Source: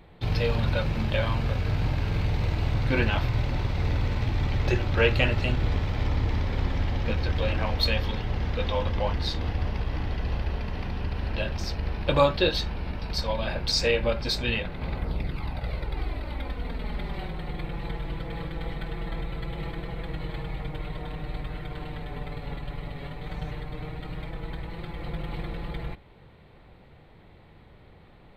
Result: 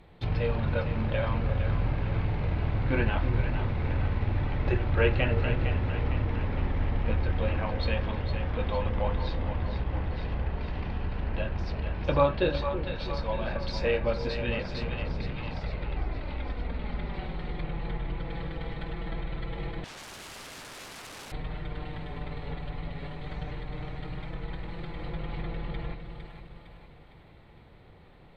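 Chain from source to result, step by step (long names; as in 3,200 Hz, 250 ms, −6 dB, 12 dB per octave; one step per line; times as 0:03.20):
echo with a time of its own for lows and highs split 500 Hz, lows 326 ms, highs 457 ms, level −8 dB
0:19.84–0:21.32: wrap-around overflow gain 36.5 dB
treble cut that deepens with the level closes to 2,300 Hz, closed at −23.5 dBFS
level −2.5 dB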